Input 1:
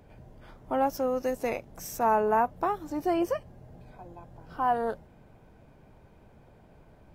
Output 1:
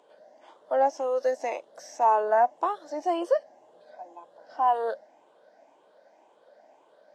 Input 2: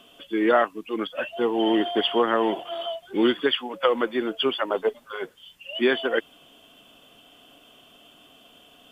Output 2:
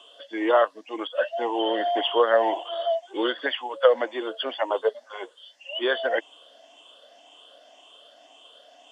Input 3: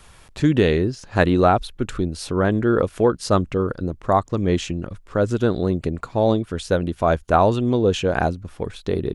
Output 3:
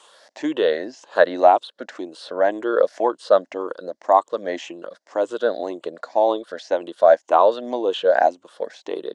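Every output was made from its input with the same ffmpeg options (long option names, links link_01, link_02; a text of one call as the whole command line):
ffmpeg -i in.wav -filter_complex "[0:a]afftfilt=real='re*pow(10,9/40*sin(2*PI*(0.67*log(max(b,1)*sr/1024/100)/log(2)-(1.9)*(pts-256)/sr)))':imag='im*pow(10,9/40*sin(2*PI*(0.67*log(max(b,1)*sr/1024/100)/log(2)-(1.9)*(pts-256)/sr)))':win_size=1024:overlap=0.75,highpass=frequency=390:width=0.5412,highpass=frequency=390:width=1.3066,equalizer=frequency=400:width_type=q:width=4:gain=-9,equalizer=frequency=600:width_type=q:width=4:gain=5,equalizer=frequency=1300:width_type=q:width=4:gain=-7,equalizer=frequency=2400:width_type=q:width=4:gain=-10,lowpass=frequency=7800:width=0.5412,lowpass=frequency=7800:width=1.3066,acrossover=split=3500[link_01][link_02];[link_02]acompressor=threshold=-49dB:ratio=4:attack=1:release=60[link_03];[link_01][link_03]amix=inputs=2:normalize=0,volume=2dB" out.wav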